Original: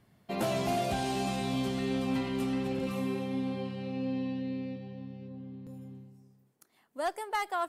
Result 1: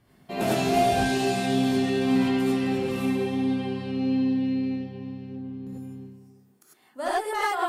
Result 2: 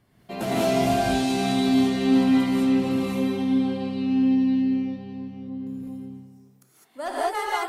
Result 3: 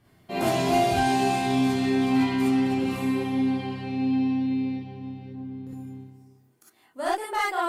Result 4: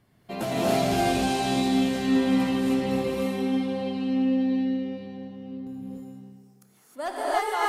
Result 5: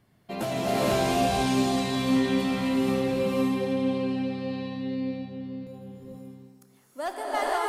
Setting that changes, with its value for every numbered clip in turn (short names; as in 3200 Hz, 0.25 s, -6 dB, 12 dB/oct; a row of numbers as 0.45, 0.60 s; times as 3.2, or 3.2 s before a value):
non-linear reverb, gate: 120, 230, 80, 340, 520 ms